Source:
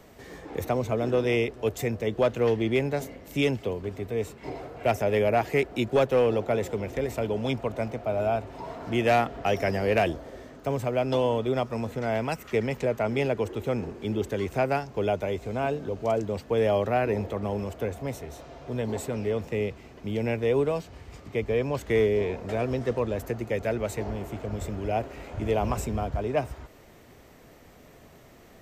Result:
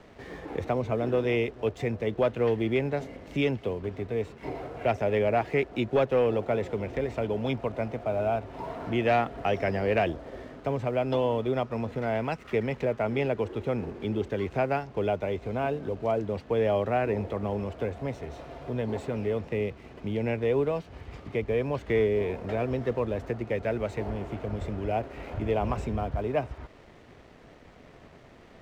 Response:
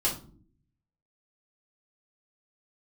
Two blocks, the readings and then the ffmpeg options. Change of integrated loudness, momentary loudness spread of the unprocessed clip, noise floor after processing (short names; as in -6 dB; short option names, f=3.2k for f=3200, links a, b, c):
-1.5 dB, 10 LU, -52 dBFS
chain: -filter_complex "[0:a]lowpass=3.5k,asplit=2[a][b];[b]acompressor=threshold=-37dB:ratio=6,volume=1dB[c];[a][c]amix=inputs=2:normalize=0,aeval=exprs='sgn(val(0))*max(abs(val(0))-0.00211,0)':c=same,volume=-3dB"